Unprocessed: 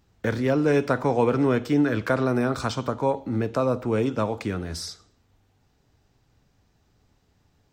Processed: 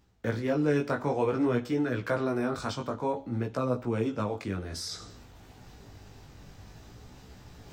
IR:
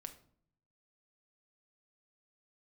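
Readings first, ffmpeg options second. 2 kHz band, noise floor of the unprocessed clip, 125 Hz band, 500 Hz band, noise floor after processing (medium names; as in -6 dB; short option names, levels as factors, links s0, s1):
-6.0 dB, -66 dBFS, -5.5 dB, -6.0 dB, -53 dBFS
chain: -af "areverse,acompressor=mode=upward:threshold=0.0562:ratio=2.5,areverse,flanger=delay=16:depth=4.7:speed=0.55,volume=0.708"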